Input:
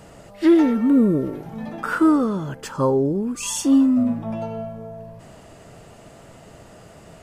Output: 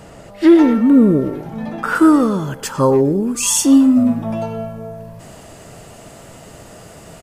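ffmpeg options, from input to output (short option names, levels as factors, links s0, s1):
-filter_complex "[0:a]asetnsamples=n=441:p=0,asendcmd='1.95 highshelf g 8.5',highshelf=f=5700:g=-2,asplit=2[s0][s1];[s1]adelay=110,highpass=300,lowpass=3400,asoftclip=type=hard:threshold=0.168,volume=0.251[s2];[s0][s2]amix=inputs=2:normalize=0,volume=1.88"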